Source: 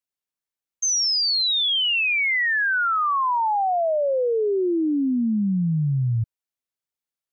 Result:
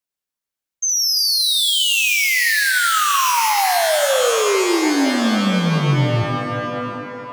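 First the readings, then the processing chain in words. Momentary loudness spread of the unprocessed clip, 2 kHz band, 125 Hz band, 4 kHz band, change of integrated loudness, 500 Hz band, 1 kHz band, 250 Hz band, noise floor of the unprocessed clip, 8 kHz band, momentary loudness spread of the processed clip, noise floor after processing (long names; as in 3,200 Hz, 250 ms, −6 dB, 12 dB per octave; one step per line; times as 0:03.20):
5 LU, +4.5 dB, +4.0 dB, +5.0 dB, +4.5 dB, +4.5 dB, +4.5 dB, +3.5 dB, below −85 dBFS, can't be measured, 9 LU, below −85 dBFS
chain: reverb with rising layers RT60 2.8 s, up +12 semitones, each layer −2 dB, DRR 5.5 dB
level +2.5 dB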